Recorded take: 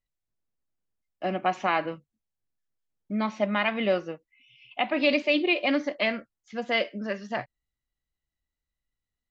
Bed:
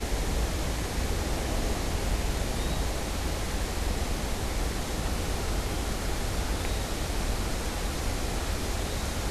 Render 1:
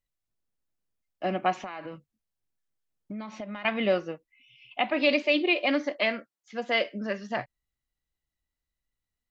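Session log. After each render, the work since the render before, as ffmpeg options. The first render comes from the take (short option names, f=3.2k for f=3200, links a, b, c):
-filter_complex "[0:a]asettb=1/sr,asplit=3[a][b][c];[a]atrim=end=1.594[d];[b]atrim=start=1.59:end=3.65,asetpts=PTS-STARTPTS,afade=t=in:d=0.004:c=qsin,afade=t=out:st=2.056:d=0.004:c=qsin,acompressor=threshold=-33dB:ratio=12:attack=3.2:release=140:knee=1:detection=peak[e];[c]atrim=start=3.646[f];[d][e]acrossfade=d=0.004:c1=hsin:c2=qsin[g];[g][f]acrossfade=d=0.004:c1=qsin:c2=hsin,asettb=1/sr,asplit=3[h][i][j];[h]atrim=end=4.904[k];[i]atrim=start=4.9:end=6.86,asetpts=PTS-STARTPTS,afade=t=in:d=0.004:c=qsin,afade=t=out:st=1.956:d=0.004:c=qsin,highpass=230[l];[j]atrim=start=6.856[m];[k][l]acrossfade=d=0.004:c1=hsin:c2=qsin[n];[n][m]acrossfade=d=0.004:c1=qsin:c2=hsin"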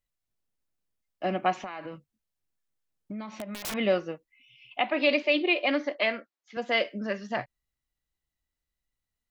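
-filter_complex "[0:a]asettb=1/sr,asplit=3[a][b][c];[a]atrim=end=3.274[d];[b]atrim=start=3.27:end=3.74,asetpts=PTS-STARTPTS,afade=t=in:d=0.004:c=qsin,afade=t=out:st=0.466:d=0.004:c=qsin,aeval=exprs='(mod(26.6*val(0)+1,2)-1)/26.6':c=same[e];[c]atrim=start=3.736[f];[d][e]acrossfade=d=0.004:c1=hsin:c2=qsin[g];[g][f]acrossfade=d=0.004:c1=qsin:c2=hsin,asettb=1/sr,asplit=3[h][i][j];[h]atrim=end=4.804[k];[i]atrim=start=4.8:end=6.57,asetpts=PTS-STARTPTS,afade=t=in:d=0.004:c=qsin,afade=t=out:st=1.766:d=0.004:c=qsin,highpass=240,lowpass=5.2k[l];[j]atrim=start=6.566[m];[k][l]acrossfade=d=0.004:c1=hsin:c2=qsin[n];[n][m]acrossfade=d=0.004:c1=qsin:c2=hsin"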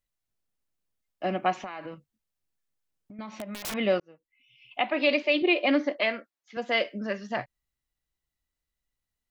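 -filter_complex "[0:a]asettb=1/sr,asplit=3[a][b][c];[a]atrim=end=1.944[d];[b]atrim=start=1.94:end=3.19,asetpts=PTS-STARTPTS,afade=t=in:d=0.004:c=qsin,afade=t=out:st=1.246:d=0.004:c=qsin,acompressor=threshold=-44dB:ratio=6:attack=3.2:release=140:knee=1:detection=peak[e];[c]atrim=start=3.186[f];[d][e]acrossfade=d=0.004:c1=hsin:c2=qsin[g];[g][f]acrossfade=d=0.004:c1=qsin:c2=hsin,asettb=1/sr,asplit=3[h][i][j];[h]atrim=end=5.424[k];[i]atrim=start=5.42:end=6.01,asetpts=PTS-STARTPTS,afade=t=in:d=0.004:c=qsin,afade=t=out:st=0.586:d=0.004:c=qsin,lowshelf=f=260:g=11.5[l];[j]atrim=start=6.006[m];[k][l]acrossfade=d=0.004:c1=hsin:c2=qsin[n];[n][m]acrossfade=d=0.004:c1=qsin:c2=hsin,asplit=2[o][p];[o]atrim=end=4,asetpts=PTS-STARTPTS,afade=t=out:st=3.996:d=0.004:c=hsin[q];[p]atrim=start=4,asetpts=PTS-STARTPTS,afade=t=in:d=0.79[r];[q][r]concat=n=2:v=0:a=1"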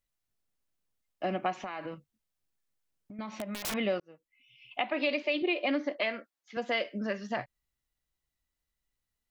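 -af "acompressor=threshold=-29dB:ratio=2.5"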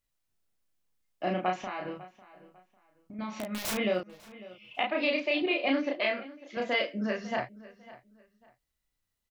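-filter_complex "[0:a]asplit=2[a][b];[b]adelay=33,volume=-2dB[c];[a][c]amix=inputs=2:normalize=0,asplit=2[d][e];[e]adelay=549,lowpass=f=4.5k:p=1,volume=-18.5dB,asplit=2[f][g];[g]adelay=549,lowpass=f=4.5k:p=1,volume=0.28[h];[d][f][h]amix=inputs=3:normalize=0"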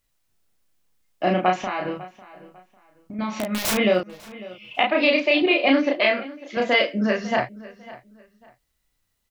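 -af "volume=9.5dB"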